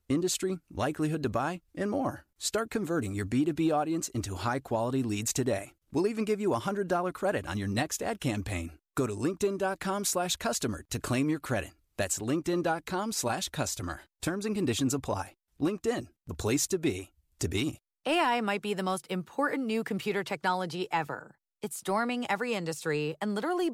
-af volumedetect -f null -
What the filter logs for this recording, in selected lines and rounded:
mean_volume: -31.1 dB
max_volume: -15.7 dB